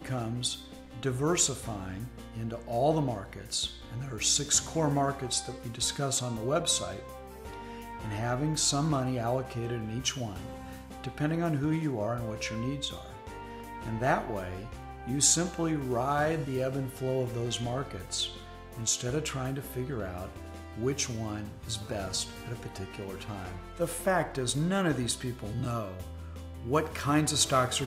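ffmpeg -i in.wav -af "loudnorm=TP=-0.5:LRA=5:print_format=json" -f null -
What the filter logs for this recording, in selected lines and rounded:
"input_i" : "-30.6",
"input_tp" : "-10.9",
"input_lra" : "5.3",
"input_thresh" : "-41.2",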